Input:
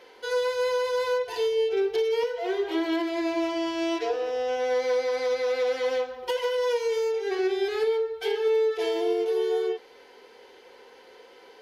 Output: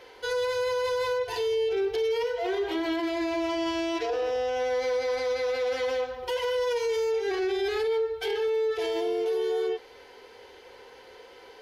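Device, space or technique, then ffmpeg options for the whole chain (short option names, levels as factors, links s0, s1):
car stereo with a boomy subwoofer: -af "lowshelf=f=140:t=q:w=1.5:g=9,alimiter=limit=0.0668:level=0:latency=1:release=11,volume=1.26"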